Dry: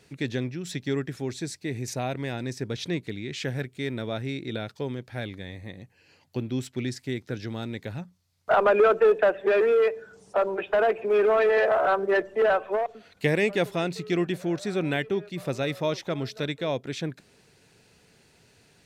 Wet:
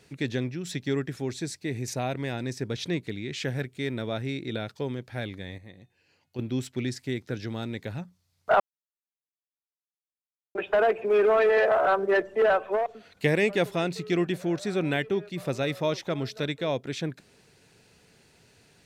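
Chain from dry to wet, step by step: 5.58–6.39 s: feedback comb 360 Hz, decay 0.9 s, mix 60%; 8.60–10.55 s: mute

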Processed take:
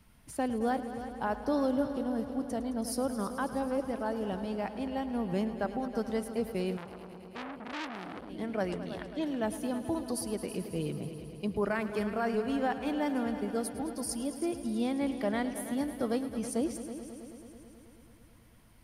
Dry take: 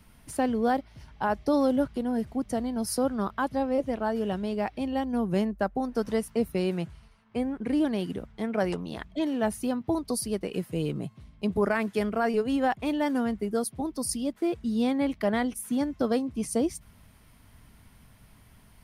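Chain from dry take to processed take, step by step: multi-head delay 108 ms, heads all three, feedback 65%, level -15.5 dB; 6.77–8.30 s: transformer saturation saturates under 2.8 kHz; trim -5.5 dB

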